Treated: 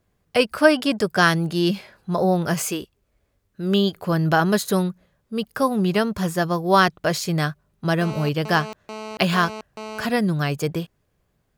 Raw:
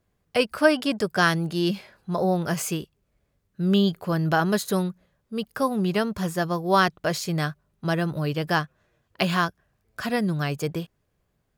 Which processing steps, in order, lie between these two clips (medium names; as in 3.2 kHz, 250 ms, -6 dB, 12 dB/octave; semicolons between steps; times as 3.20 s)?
2.68–3.97 s: peaking EQ 160 Hz -11 dB 0.43 oct; 8.01–10.05 s: mobile phone buzz -37 dBFS; trim +3.5 dB